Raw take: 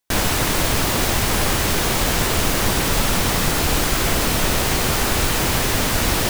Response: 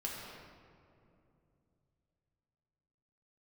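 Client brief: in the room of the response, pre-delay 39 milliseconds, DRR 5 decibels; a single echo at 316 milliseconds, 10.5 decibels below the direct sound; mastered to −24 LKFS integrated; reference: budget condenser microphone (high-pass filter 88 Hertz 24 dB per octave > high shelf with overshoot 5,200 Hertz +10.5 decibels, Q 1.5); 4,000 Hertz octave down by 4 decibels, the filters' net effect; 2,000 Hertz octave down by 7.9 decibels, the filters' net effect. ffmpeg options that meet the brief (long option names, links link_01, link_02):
-filter_complex "[0:a]equalizer=frequency=2000:width_type=o:gain=-7.5,equalizer=frequency=4000:width_type=o:gain=-5.5,aecho=1:1:316:0.299,asplit=2[link_01][link_02];[1:a]atrim=start_sample=2205,adelay=39[link_03];[link_02][link_03]afir=irnorm=-1:irlink=0,volume=-6.5dB[link_04];[link_01][link_04]amix=inputs=2:normalize=0,highpass=frequency=88:width=0.5412,highpass=frequency=88:width=1.3066,highshelf=frequency=5200:width_type=q:width=1.5:gain=10.5,volume=-13dB"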